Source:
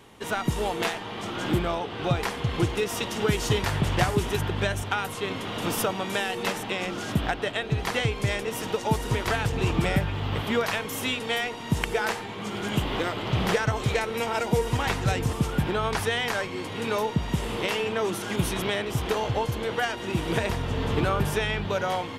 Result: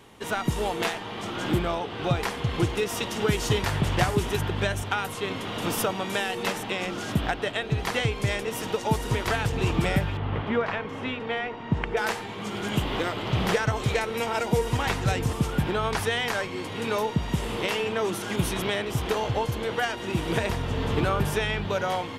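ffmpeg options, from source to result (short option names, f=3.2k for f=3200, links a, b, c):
-filter_complex "[0:a]asettb=1/sr,asplit=3[a][b][c];[a]atrim=end=10.174[d];[b]atrim=start=10.17:end=11.97,asetpts=PTS-STARTPTS,afade=t=in:d=0.004:c=qsin,afade=t=out:st=1.796:d=0.004:c=qsin,lowpass=2.1k[e];[c]atrim=start=11.966[f];[d][e]acrossfade=d=0.004:c1=hsin:c2=qsin[g];[g][f]acrossfade=d=0.004:c1=qsin:c2=hsin"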